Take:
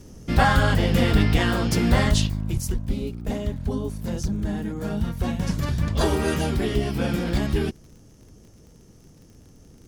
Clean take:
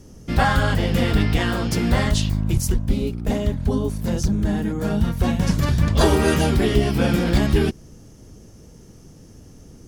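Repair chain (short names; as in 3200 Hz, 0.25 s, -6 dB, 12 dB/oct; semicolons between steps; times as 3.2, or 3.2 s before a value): de-click; gain correction +5.5 dB, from 2.27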